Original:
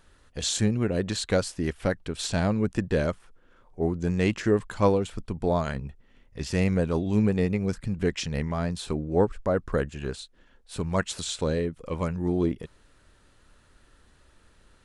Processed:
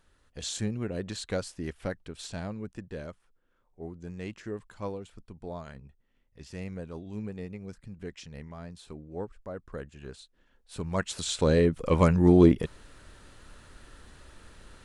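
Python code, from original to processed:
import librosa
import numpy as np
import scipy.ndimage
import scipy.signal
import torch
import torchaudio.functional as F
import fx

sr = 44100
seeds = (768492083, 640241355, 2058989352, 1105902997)

y = fx.gain(x, sr, db=fx.line((1.85, -7.5), (2.84, -14.5), (9.61, -14.5), (11.12, -2.5), (11.74, 7.5)))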